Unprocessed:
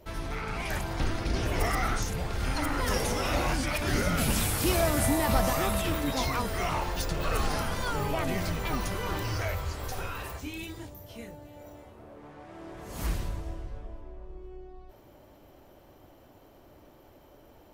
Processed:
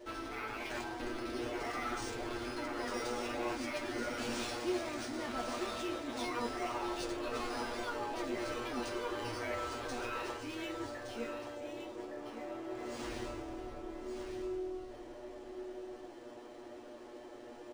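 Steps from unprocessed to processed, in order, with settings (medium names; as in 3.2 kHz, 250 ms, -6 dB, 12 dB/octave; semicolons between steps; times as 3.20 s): resonant low shelf 220 Hz -10 dB, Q 3; reverse; compression 5:1, threshold -39 dBFS, peak gain reduction 18.5 dB; reverse; bit crusher 11-bit; feedback comb 120 Hz, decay 0.16 s, harmonics all, mix 100%; on a send: delay 1166 ms -7.5 dB; on the sum: decimation joined by straight lines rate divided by 3×; trim +10 dB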